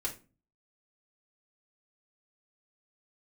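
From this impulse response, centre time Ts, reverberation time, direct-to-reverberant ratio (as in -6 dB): 13 ms, 0.35 s, -3.5 dB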